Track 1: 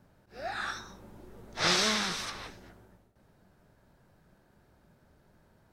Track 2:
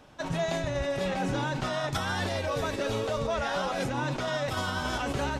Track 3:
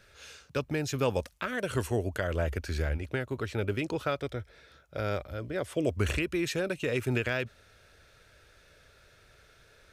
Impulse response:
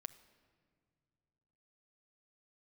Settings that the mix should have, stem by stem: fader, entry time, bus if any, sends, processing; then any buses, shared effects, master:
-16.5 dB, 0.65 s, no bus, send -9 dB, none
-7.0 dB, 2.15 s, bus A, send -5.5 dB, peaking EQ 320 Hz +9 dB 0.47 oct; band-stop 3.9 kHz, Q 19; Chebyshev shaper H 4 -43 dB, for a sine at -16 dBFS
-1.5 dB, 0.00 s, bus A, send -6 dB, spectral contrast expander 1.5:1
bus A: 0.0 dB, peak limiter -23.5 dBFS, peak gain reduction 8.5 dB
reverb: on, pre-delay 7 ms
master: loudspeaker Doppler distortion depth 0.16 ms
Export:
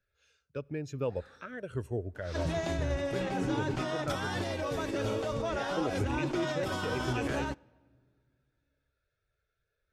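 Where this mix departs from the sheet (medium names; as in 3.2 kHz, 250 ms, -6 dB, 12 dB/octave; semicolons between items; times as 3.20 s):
stem 1 -16.5 dB -> -25.0 dB; stem 3 -1.5 dB -> -8.0 dB; master: missing loudspeaker Doppler distortion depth 0.16 ms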